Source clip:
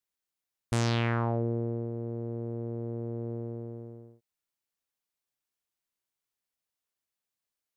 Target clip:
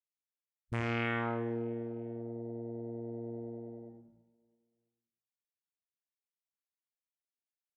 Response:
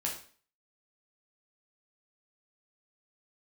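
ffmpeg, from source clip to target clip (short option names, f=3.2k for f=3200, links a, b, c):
-filter_complex "[0:a]afwtdn=0.0141,equalizer=f=2.1k:t=o:w=1.2:g=7.5,aecho=1:1:331|662|993:0.0891|0.0357|0.0143,asplit=2[a][b];[1:a]atrim=start_sample=2205,lowpass=6.9k,adelay=80[c];[b][c]afir=irnorm=-1:irlink=0,volume=-5.5dB[d];[a][d]amix=inputs=2:normalize=0,volume=-7dB"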